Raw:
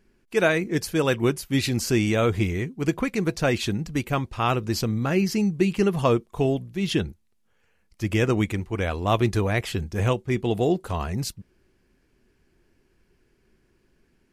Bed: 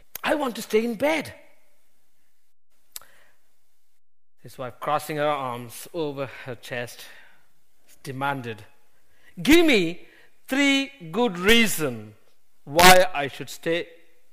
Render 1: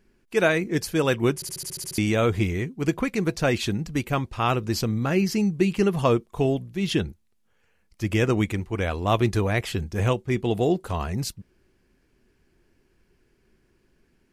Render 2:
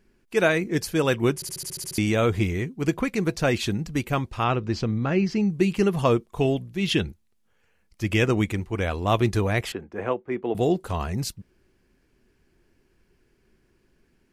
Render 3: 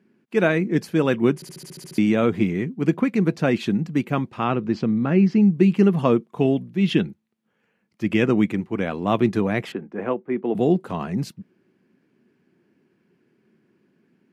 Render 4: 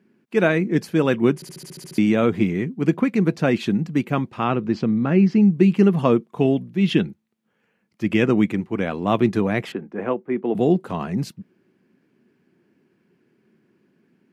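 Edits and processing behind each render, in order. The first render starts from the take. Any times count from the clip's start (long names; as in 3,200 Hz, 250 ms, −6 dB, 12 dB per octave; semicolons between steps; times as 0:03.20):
0:01.35: stutter in place 0.07 s, 9 plays
0:04.44–0:05.50: high-frequency loss of the air 140 metres; 0:06.26–0:08.24: dynamic equaliser 2,700 Hz, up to +5 dB, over −42 dBFS, Q 1.2; 0:09.72–0:10.55: three-way crossover with the lows and the highs turned down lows −20 dB, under 240 Hz, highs −24 dB, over 2,200 Hz
high-pass filter 190 Hz 24 dB per octave; bass and treble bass +14 dB, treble −11 dB
level +1 dB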